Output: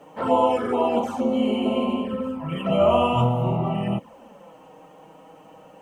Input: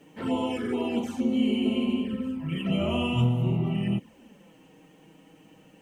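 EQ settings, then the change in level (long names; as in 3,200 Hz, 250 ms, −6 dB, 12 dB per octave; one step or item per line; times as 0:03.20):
flat-topped bell 820 Hz +13.5 dB
+1.0 dB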